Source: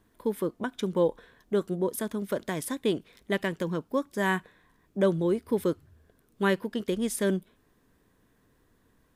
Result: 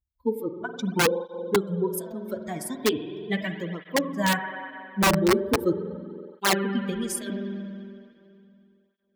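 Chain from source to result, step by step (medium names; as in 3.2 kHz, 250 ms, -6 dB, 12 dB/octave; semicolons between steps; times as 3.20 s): expander on every frequency bin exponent 2; spring tank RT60 2.6 s, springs 46 ms, chirp 70 ms, DRR 6 dB; integer overflow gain 19.5 dB; cancelling through-zero flanger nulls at 0.39 Hz, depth 7.8 ms; trim +8.5 dB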